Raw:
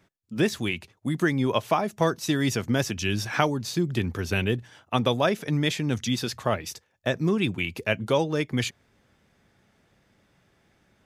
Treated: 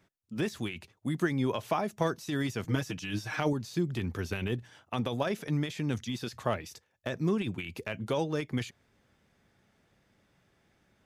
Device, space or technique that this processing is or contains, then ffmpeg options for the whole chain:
de-esser from a sidechain: -filter_complex "[0:a]asettb=1/sr,asplit=3[a][b][c];[a]atrim=end=2.644[d];[b]atrim=start=2.64:end=3.53,asetpts=PTS-STARTPTS,afade=t=in:d=0.004:c=qsin,afade=t=out:st=0.886:d=0.004:c=qsin,aecho=1:1:6.5:0.82,atrim=end_sample=39249[e];[c]atrim=start=3.526[f];[d][e]acrossfade=d=0.004:c1=hsin:c2=qsin[g];[g][f]acrossfade=d=0.004:c1=qsin:c2=hsin,asplit=2[h][i];[i]highpass=4.1k,apad=whole_len=487500[j];[h][j]sidechaincompress=threshold=-39dB:ratio=8:attack=1.6:release=35,volume=-4.5dB"

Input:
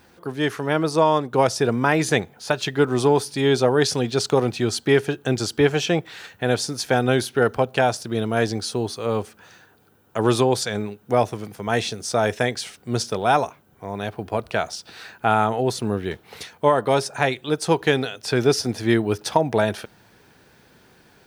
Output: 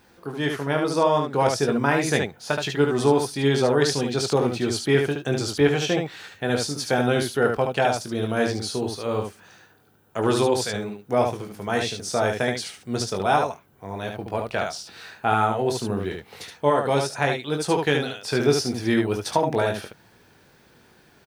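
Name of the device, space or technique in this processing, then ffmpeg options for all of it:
slapback doubling: -filter_complex "[0:a]asplit=3[a][b][c];[b]adelay=21,volume=-6.5dB[d];[c]adelay=73,volume=-4.5dB[e];[a][d][e]amix=inputs=3:normalize=0,volume=-3.5dB"

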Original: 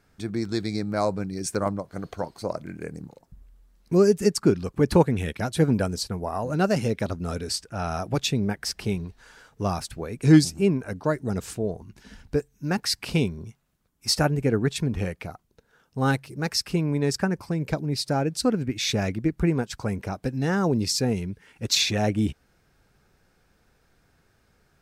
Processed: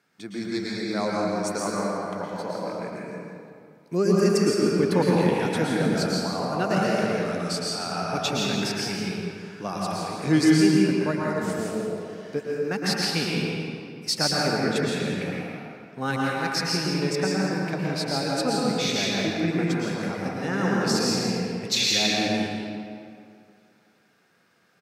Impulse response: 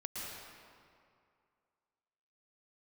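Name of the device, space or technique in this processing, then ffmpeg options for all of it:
PA in a hall: -filter_complex "[0:a]highpass=f=150:w=0.5412,highpass=f=150:w=1.3066,equalizer=f=2.6k:t=o:w=2.4:g=5,aecho=1:1:166:0.355[a];[1:a]atrim=start_sample=2205[b];[a][b]afir=irnorm=-1:irlink=0,volume=-1dB"

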